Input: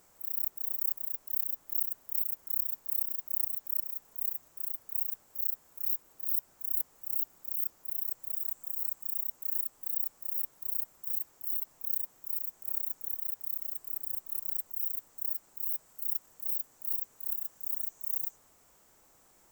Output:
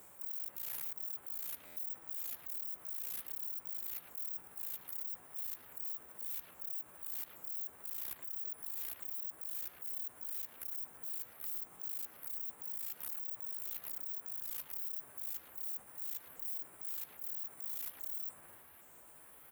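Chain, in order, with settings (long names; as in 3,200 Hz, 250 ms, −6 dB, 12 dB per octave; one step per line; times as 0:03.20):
pitch shifter swept by a sawtooth +10 semitones, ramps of 818 ms
high-pass filter 56 Hz
parametric band 5,300 Hz −13.5 dB 1.2 octaves
brickwall limiter −27 dBFS, peak gain reduction 10 dB
transient designer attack −1 dB, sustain +6 dB
far-end echo of a speakerphone 110 ms, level −6 dB
hard clipping −38 dBFS, distortion −8 dB
buffer that repeats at 0:01.65, samples 512, times 9
multiband upward and downward compressor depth 40%
level +2 dB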